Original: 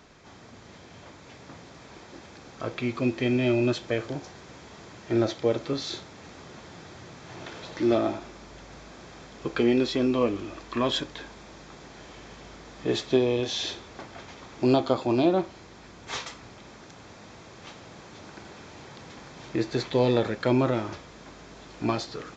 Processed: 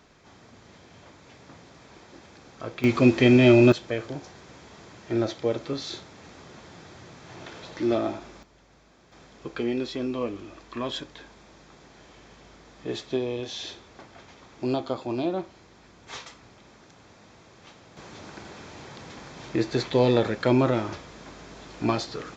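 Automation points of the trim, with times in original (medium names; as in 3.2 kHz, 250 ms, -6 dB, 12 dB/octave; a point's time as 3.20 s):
-3 dB
from 2.84 s +8 dB
from 3.72 s -1.5 dB
from 8.43 s -12 dB
from 9.12 s -5.5 dB
from 17.97 s +2 dB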